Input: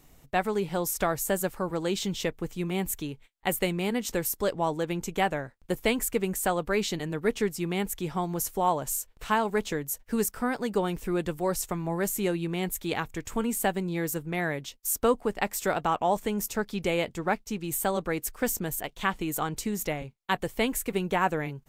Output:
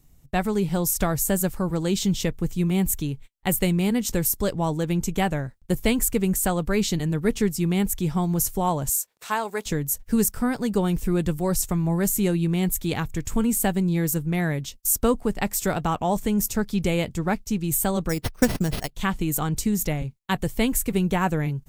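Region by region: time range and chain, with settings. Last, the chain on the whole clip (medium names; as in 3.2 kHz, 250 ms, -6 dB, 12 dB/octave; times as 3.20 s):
8.89–9.66 s: high-pass 470 Hz + band-stop 3 kHz, Q 18
18.09–18.95 s: transient shaper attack +6 dB, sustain -9 dB + careless resampling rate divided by 6×, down none, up hold
whole clip: gate -51 dBFS, range -10 dB; tone controls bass +13 dB, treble +7 dB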